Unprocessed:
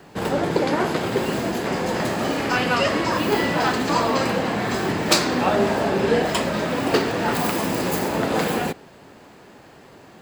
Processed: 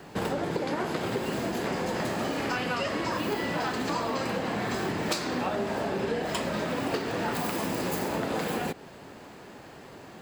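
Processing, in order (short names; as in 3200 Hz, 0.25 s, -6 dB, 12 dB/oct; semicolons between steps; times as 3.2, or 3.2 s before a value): compressor, threshold -27 dBFS, peak gain reduction 14 dB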